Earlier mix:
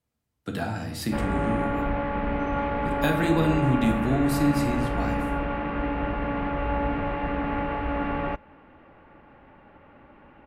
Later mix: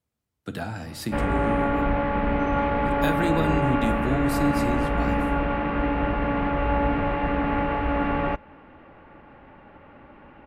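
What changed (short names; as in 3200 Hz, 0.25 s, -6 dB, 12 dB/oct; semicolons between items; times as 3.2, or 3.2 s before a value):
speech: send -8.0 dB; background +3.5 dB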